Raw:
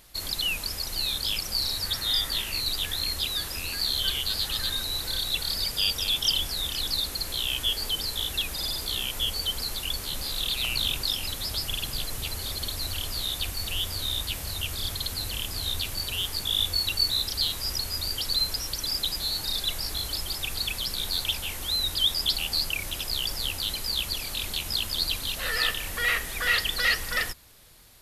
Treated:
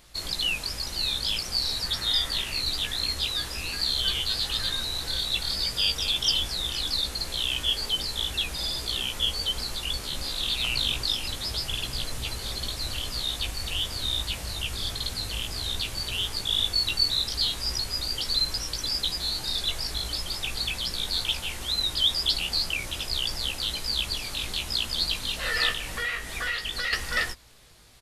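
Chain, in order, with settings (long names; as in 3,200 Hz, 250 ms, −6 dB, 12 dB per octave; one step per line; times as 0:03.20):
parametric band 13,000 Hz −12 dB 0.51 octaves
double-tracking delay 17 ms −5 dB
0:25.72–0:26.93: downward compressor 6 to 1, threshold −27 dBFS, peak gain reduction 9.5 dB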